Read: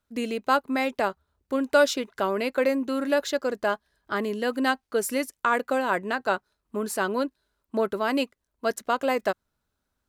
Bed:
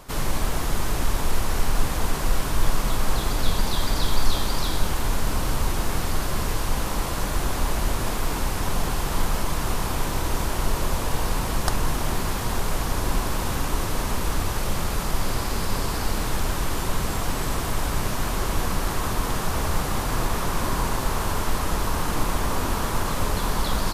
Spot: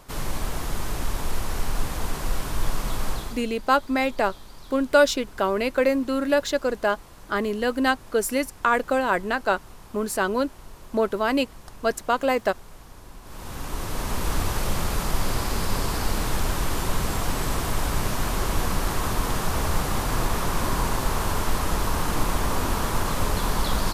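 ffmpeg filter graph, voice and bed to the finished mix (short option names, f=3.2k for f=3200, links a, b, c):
-filter_complex "[0:a]adelay=3200,volume=2.5dB[a];[1:a]volume=16.5dB,afade=t=out:st=3.07:d=0.38:silence=0.149624,afade=t=in:st=13.22:d=1.16:silence=0.0944061[b];[a][b]amix=inputs=2:normalize=0"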